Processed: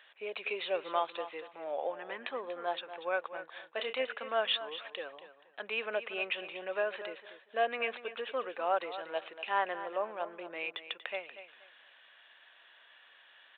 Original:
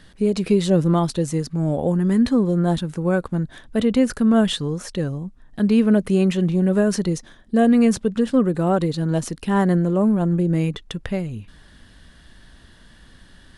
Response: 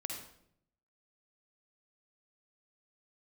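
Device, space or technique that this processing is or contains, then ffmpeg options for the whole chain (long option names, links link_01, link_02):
musical greeting card: -filter_complex "[0:a]aresample=8000,aresample=44100,highpass=frequency=600:width=0.5412,highpass=frequency=600:width=1.3066,equalizer=frequency=2500:width_type=o:width=0.35:gain=9.5,asettb=1/sr,asplit=3[link_01][link_02][link_03];[link_01]atrim=end=3.294[link_04];[link_02]atrim=start=3.29:end=4.05,asetpts=PTS-STARTPTS,afade=type=in:duration=0.004:curve=qsin,afade=type=out:start_time=0.756:duration=0.004:curve=qsin,asplit=2[link_05][link_06];[link_06]adelay=31,volume=-8dB[link_07];[link_05][link_07]amix=inputs=2:normalize=0,atrim=end_sample=33516[link_08];[link_03]atrim=start=4.046[link_09];[link_04][link_08]acrossfade=duration=0.004:curve1=hsin:curve2=qsin[link_10];[link_10][link_09]acrossfade=duration=0.004:curve1=qsin:curve2=hsin,aecho=1:1:238|476|714:0.237|0.0569|0.0137,volume=-6dB"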